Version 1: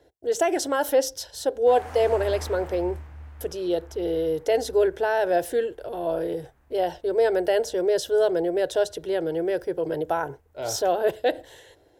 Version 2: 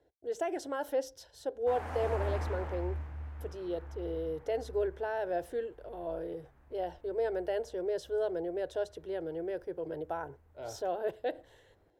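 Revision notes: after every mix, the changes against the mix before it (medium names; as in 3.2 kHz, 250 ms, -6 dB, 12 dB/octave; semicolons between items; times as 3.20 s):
speech -11.0 dB; master: add treble shelf 3.4 kHz -9.5 dB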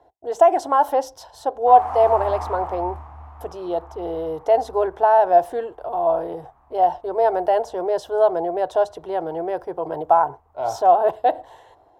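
speech +8.5 dB; master: add high-order bell 910 Hz +15.5 dB 1.1 oct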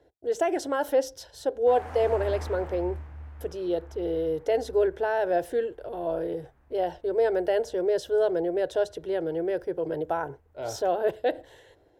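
master: add high-order bell 910 Hz -15.5 dB 1.1 oct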